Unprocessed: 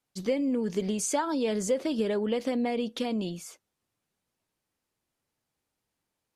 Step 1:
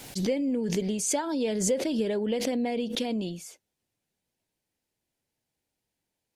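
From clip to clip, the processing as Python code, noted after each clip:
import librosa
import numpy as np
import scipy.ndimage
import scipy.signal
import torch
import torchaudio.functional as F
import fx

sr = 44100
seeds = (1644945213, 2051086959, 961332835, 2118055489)

y = fx.peak_eq(x, sr, hz=1200.0, db=-10.5, octaves=0.48)
y = fx.pre_swell(y, sr, db_per_s=51.0)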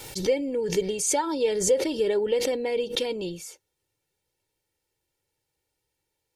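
y = x + 0.74 * np.pad(x, (int(2.2 * sr / 1000.0), 0))[:len(x)]
y = y * librosa.db_to_amplitude(1.5)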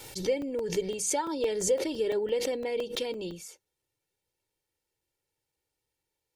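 y = fx.hum_notches(x, sr, base_hz=50, count=4)
y = fx.buffer_crackle(y, sr, first_s=0.42, period_s=0.17, block=128, kind='zero')
y = y * librosa.db_to_amplitude(-4.5)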